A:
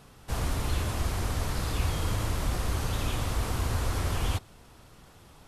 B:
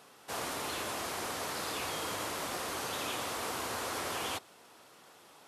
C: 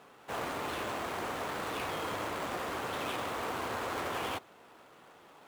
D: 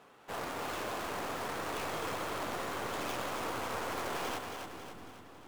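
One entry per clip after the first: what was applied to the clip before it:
HPF 370 Hz 12 dB/oct
median filter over 9 samples; gain +2.5 dB
tracing distortion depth 0.24 ms; split-band echo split 330 Hz, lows 0.727 s, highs 0.274 s, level -5.5 dB; gain -2.5 dB

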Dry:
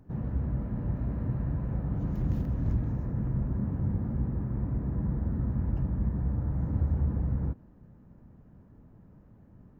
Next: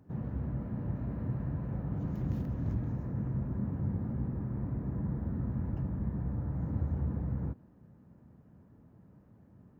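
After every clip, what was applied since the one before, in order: HPF 79 Hz; gain -2.5 dB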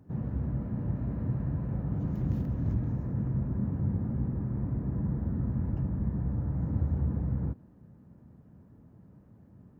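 low shelf 410 Hz +4 dB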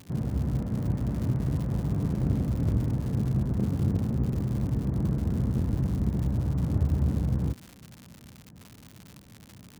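self-modulated delay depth 0.79 ms; crackle 170/s -39 dBFS; gain +4 dB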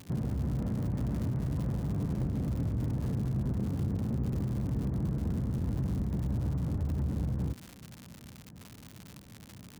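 limiter -24.5 dBFS, peak gain reduction 11.5 dB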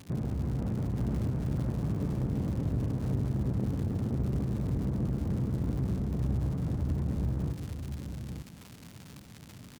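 on a send: tapped delay 0.28/0.405/0.893 s -13/-16.5/-7.5 dB; on the sum: Doppler distortion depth 0.44 ms

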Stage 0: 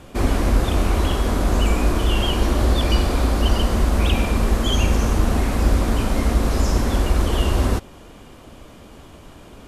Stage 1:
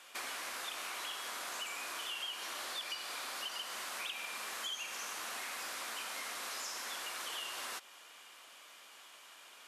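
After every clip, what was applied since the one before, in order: HPF 1500 Hz 12 dB/oct; compressor, threshold -36 dBFS, peak gain reduction 12.5 dB; gain -3 dB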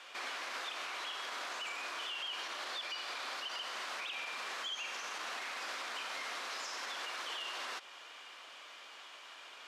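three-band isolator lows -19 dB, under 220 Hz, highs -19 dB, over 6000 Hz; limiter -37.5 dBFS, peak gain reduction 7 dB; gain +5 dB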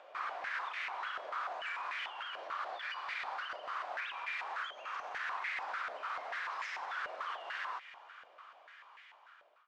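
ending faded out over 2.22 s; upward compressor, threshold -52 dBFS; stepped band-pass 6.8 Hz 610–2000 Hz; gain +10 dB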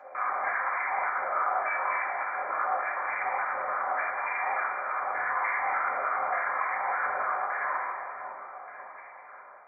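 brick-wall FIR low-pass 2400 Hz; split-band echo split 910 Hz, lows 0.547 s, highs 0.195 s, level -6.5 dB; reverb RT60 0.95 s, pre-delay 3 ms, DRR -4.5 dB

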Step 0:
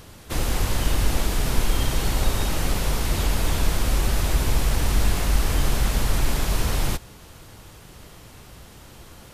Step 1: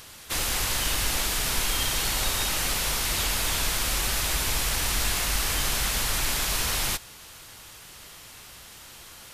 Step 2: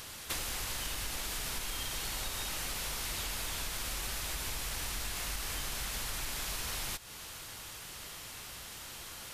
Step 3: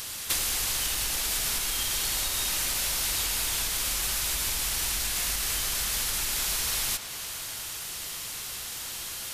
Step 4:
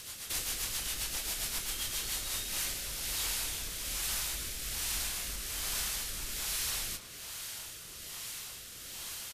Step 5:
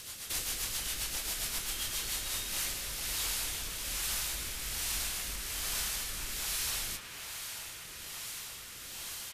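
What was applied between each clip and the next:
tilt shelf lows -8 dB, about 840 Hz; gain -2.5 dB
compressor 10:1, threshold -34 dBFS, peak gain reduction 14 dB
high shelf 2900 Hz +9.5 dB; tape echo 0.109 s, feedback 83%, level -9.5 dB, low-pass 4900 Hz; gain +2.5 dB
rotary speaker horn 7.5 Hz, later 1.2 Hz, at 1.85; doubler 27 ms -10.5 dB; gain -5 dB
band-limited delay 0.448 s, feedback 76%, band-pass 1500 Hz, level -9 dB

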